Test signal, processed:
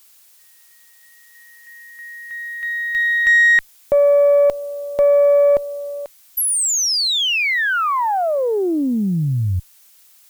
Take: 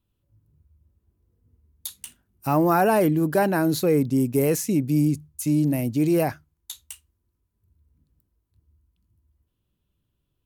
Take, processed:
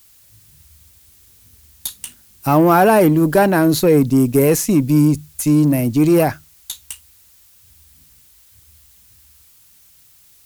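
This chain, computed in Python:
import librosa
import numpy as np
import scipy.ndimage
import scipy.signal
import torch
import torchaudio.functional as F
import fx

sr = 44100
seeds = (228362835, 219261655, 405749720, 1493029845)

y = fx.dmg_noise_colour(x, sr, seeds[0], colour='blue', level_db=-58.0)
y = fx.cheby_harmonics(y, sr, harmonics=(5, 8), levels_db=(-31, -30), full_scale_db=-9.0)
y = y * librosa.db_to_amplitude(7.0)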